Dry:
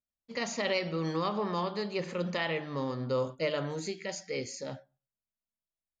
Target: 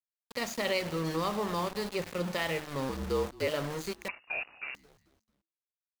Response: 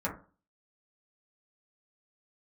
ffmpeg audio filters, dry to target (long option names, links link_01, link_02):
-filter_complex "[0:a]asettb=1/sr,asplit=3[link_01][link_02][link_03];[link_01]atrim=end=2.894[link_04];[link_02]atrim=start=2.89:end=3.48,asetpts=PTS-STARTPTS,afade=type=in:duration=0.004:curve=qsin,afade=type=out:start_time=0.586:duration=0.004:curve=qsin,afreqshift=-53[link_05];[link_03]atrim=start=3.476[link_06];[link_04][link_05]acrossfade=duration=0.004:curve1=hsin:curve2=qsin[link_07];[link_07][link_06]acrossfade=duration=0.004:curve1=qsin:curve2=hsin,aeval=exprs='val(0)*gte(abs(val(0)),0.015)':channel_layout=same,asplit=4[link_08][link_09][link_10][link_11];[link_09]adelay=221,afreqshift=-110,volume=-22dB[link_12];[link_10]adelay=442,afreqshift=-220,volume=-30.2dB[link_13];[link_11]adelay=663,afreqshift=-330,volume=-38.4dB[link_14];[link_08][link_12][link_13][link_14]amix=inputs=4:normalize=0,asettb=1/sr,asplit=3[link_15][link_16][link_17];[link_15]atrim=end=4.084[link_18];[link_16]atrim=start=4.08:end=4.75,asetpts=PTS-STARTPTS,afade=type=in:duration=0.004:curve=qsin,afade=type=out:start_time=0.666:duration=0.004:curve=qsin,lowpass=frequency=2500:width_type=q:width=0.5098,lowpass=frequency=2500:width_type=q:width=0.6013,lowpass=frequency=2500:width_type=q:width=0.9,lowpass=frequency=2500:width_type=q:width=2.563,afreqshift=-2900[link_19];[link_17]atrim=start=4.746[link_20];[link_18][link_19]acrossfade=duration=0.004:curve1=hsin:curve2=qsin[link_21];[link_21][link_20]acrossfade=duration=0.004:curve1=qsin:curve2=hsin"